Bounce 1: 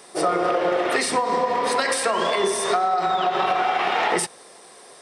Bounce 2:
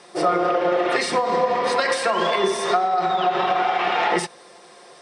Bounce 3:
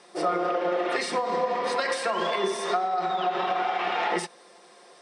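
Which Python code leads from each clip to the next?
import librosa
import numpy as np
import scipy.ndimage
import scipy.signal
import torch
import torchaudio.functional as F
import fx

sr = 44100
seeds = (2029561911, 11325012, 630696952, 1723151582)

y1 = scipy.signal.sosfilt(scipy.signal.butter(2, 6000.0, 'lowpass', fs=sr, output='sos'), x)
y1 = y1 + 0.44 * np.pad(y1, (int(5.7 * sr / 1000.0), 0))[:len(y1)]
y1 = fx.rider(y1, sr, range_db=10, speed_s=0.5)
y2 = fx.brickwall_highpass(y1, sr, low_hz=150.0)
y2 = y2 * librosa.db_to_amplitude(-6.0)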